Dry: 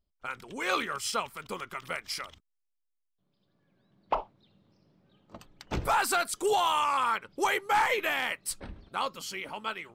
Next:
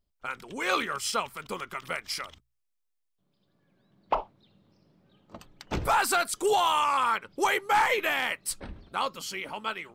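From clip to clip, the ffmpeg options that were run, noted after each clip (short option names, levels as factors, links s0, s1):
-af "bandreject=f=60:t=h:w=6,bandreject=f=120:t=h:w=6,volume=1.26"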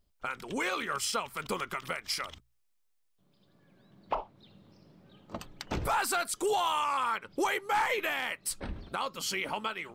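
-filter_complex "[0:a]asplit=2[s0][s1];[s1]acompressor=threshold=0.0224:ratio=6,volume=0.891[s2];[s0][s2]amix=inputs=2:normalize=0,alimiter=limit=0.0841:level=0:latency=1:release=338"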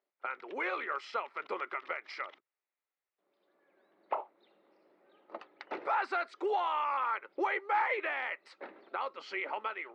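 -af "highpass=f=340:w=0.5412,highpass=f=340:w=1.3066,equalizer=f=360:t=q:w=4:g=5,equalizer=f=570:t=q:w=4:g=4,equalizer=f=830:t=q:w=4:g=4,equalizer=f=1300:t=q:w=4:g=4,equalizer=f=2000:t=q:w=4:g=6,equalizer=f=3200:t=q:w=4:g=-7,lowpass=f=3600:w=0.5412,lowpass=f=3600:w=1.3066,volume=0.531"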